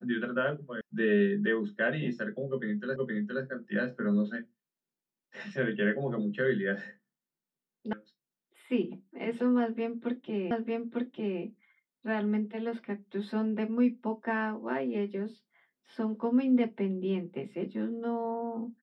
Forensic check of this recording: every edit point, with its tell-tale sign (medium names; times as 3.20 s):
0.81 s: sound stops dead
2.96 s: repeat of the last 0.47 s
7.93 s: sound stops dead
10.51 s: repeat of the last 0.9 s